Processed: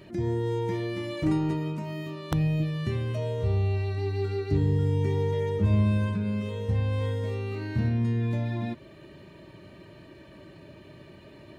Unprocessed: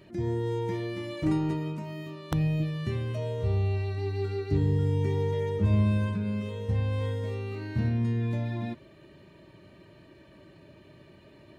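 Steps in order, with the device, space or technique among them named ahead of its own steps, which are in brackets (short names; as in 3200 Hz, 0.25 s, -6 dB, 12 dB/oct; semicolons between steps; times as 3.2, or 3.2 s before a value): parallel compression (in parallel at -3 dB: compressor, threshold -38 dBFS, peak gain reduction 17.5 dB)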